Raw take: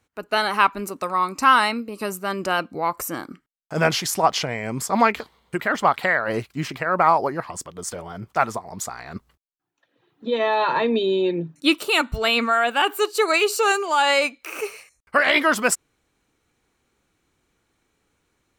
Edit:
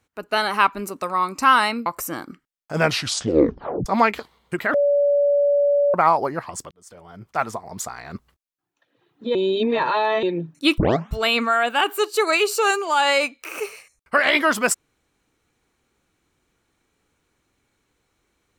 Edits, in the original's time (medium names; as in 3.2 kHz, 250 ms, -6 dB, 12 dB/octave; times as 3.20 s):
1.86–2.87 s: delete
3.85 s: tape stop 1.02 s
5.75–6.95 s: bleep 573 Hz -14.5 dBFS
7.72–8.68 s: fade in
10.36–11.24 s: reverse
11.79 s: tape start 0.35 s